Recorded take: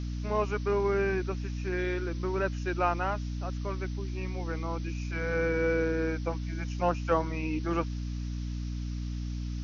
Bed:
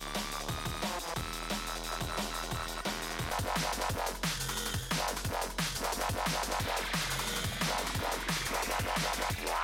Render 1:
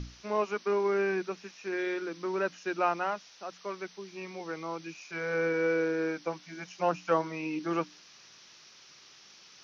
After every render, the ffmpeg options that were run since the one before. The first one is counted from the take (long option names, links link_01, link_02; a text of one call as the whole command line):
ffmpeg -i in.wav -af "bandreject=frequency=60:width_type=h:width=6,bandreject=frequency=120:width_type=h:width=6,bandreject=frequency=180:width_type=h:width=6,bandreject=frequency=240:width_type=h:width=6,bandreject=frequency=300:width_type=h:width=6" out.wav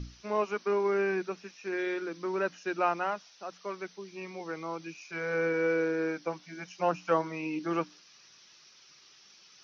ffmpeg -i in.wav -af "afftdn=noise_reduction=6:noise_floor=-56" out.wav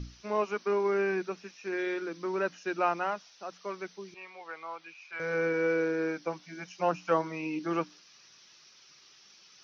ffmpeg -i in.wav -filter_complex "[0:a]asettb=1/sr,asplit=3[link_01][link_02][link_03];[link_01]atrim=end=4.144[link_04];[link_02]atrim=start=4.14:end=5.2,asetpts=PTS-STARTPTS,afade=type=in:duration=0.004:curve=qsin,afade=type=out:start_time=1.056:duration=0.004:curve=qsin,acrossover=split=590 4300:gain=0.0794 1 0.0794[link_05][link_06][link_07];[link_05][link_06][link_07]amix=inputs=3:normalize=0[link_08];[link_03]atrim=start=5.196[link_09];[link_04][link_08]acrossfade=duration=0.004:curve1=hsin:curve2=qsin[link_10];[link_10][link_09]acrossfade=duration=0.004:curve1=qsin:curve2=hsin" out.wav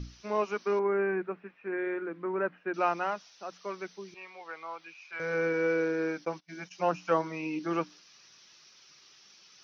ffmpeg -i in.wav -filter_complex "[0:a]asettb=1/sr,asplit=3[link_01][link_02][link_03];[link_01]atrim=end=0.794[link_04];[link_02]atrim=start=0.79:end=2.74,asetpts=PTS-STARTPTS,afade=type=in:duration=0.004:curve=qsin,afade=type=out:start_time=1.946:duration=0.004:curve=qsin,lowpass=frequency=2100:width=0.5412,lowpass=frequency=2100:width=1.3066[link_05];[link_03]atrim=start=2.736[link_06];[link_04][link_05]acrossfade=duration=0.004:curve1=hsin:curve2=qsin[link_07];[link_07][link_06]acrossfade=duration=0.004:curve1=qsin:curve2=hsin,asplit=3[link_08][link_09][link_10];[link_08]afade=type=out:start_time=6.24:duration=0.02[link_11];[link_09]agate=range=-23dB:threshold=-50dB:ratio=16:release=100:detection=peak,afade=type=in:start_time=6.24:duration=0.02,afade=type=out:start_time=6.71:duration=0.02[link_12];[link_10]afade=type=in:start_time=6.71:duration=0.02[link_13];[link_11][link_12][link_13]amix=inputs=3:normalize=0" out.wav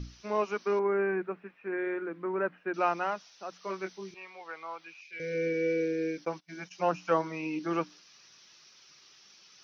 ffmpeg -i in.wav -filter_complex "[0:a]asettb=1/sr,asplit=3[link_01][link_02][link_03];[link_01]atrim=end=3.604[link_04];[link_02]atrim=start=3.6:end=4.11,asetpts=PTS-STARTPTS,afade=type=in:duration=0.004:curve=qsin,afade=type=out:start_time=0.506:duration=0.004:curve=qsin,asplit=2[link_05][link_06];[link_06]adelay=21,volume=-4dB[link_07];[link_05][link_07]amix=inputs=2:normalize=0,atrim=end_sample=22491[link_08];[link_03]atrim=start=4.106[link_09];[link_04][link_08]acrossfade=duration=0.004:curve1=hsin:curve2=qsin[link_10];[link_10][link_09]acrossfade=duration=0.004:curve1=qsin:curve2=hsin,asettb=1/sr,asplit=3[link_11][link_12][link_13];[link_11]atrim=end=5.014[link_14];[link_12]atrim=start=5.01:end=6.18,asetpts=PTS-STARTPTS,afade=type=in:duration=0.004:curve=qsin,afade=type=out:start_time=1.166:duration=0.004:curve=qsin,asuperstop=centerf=1000:order=8:qfactor=0.77[link_15];[link_13]atrim=start=6.176[link_16];[link_14][link_15]acrossfade=duration=0.004:curve1=hsin:curve2=qsin[link_17];[link_17][link_16]acrossfade=duration=0.004:curve1=qsin:curve2=hsin" out.wav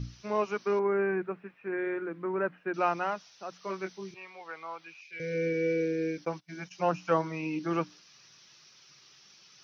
ffmpeg -i in.wav -af "equalizer=frequency=130:width_type=o:width=0.72:gain=9" out.wav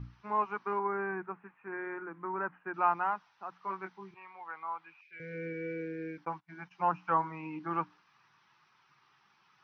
ffmpeg -i in.wav -af "lowpass=1500,lowshelf=frequency=720:width_type=q:width=3:gain=-6.5" out.wav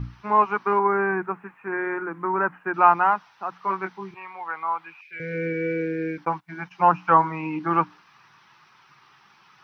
ffmpeg -i in.wav -af "volume=12dB" out.wav